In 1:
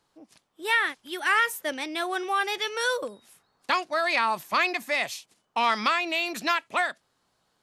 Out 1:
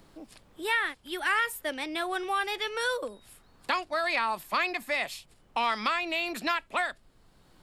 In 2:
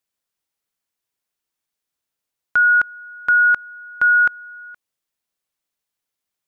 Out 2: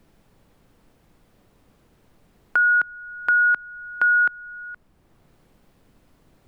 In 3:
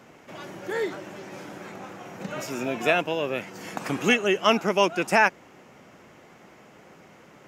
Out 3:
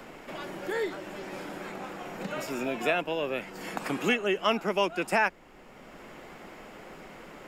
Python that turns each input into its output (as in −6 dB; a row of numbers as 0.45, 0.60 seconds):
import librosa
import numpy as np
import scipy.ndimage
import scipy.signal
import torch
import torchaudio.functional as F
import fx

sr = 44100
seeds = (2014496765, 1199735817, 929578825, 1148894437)

y = scipy.signal.sosfilt(scipy.signal.butter(2, 150.0, 'highpass', fs=sr, output='sos'), x)
y = fx.peak_eq(y, sr, hz=6100.0, db=-9.5, octaves=0.21)
y = fx.dmg_noise_colour(y, sr, seeds[0], colour='brown', level_db=-58.0)
y = fx.band_squash(y, sr, depth_pct=40)
y = F.gain(torch.from_numpy(y), -3.5).numpy()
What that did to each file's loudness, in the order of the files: −3.5, −3.5, −6.0 LU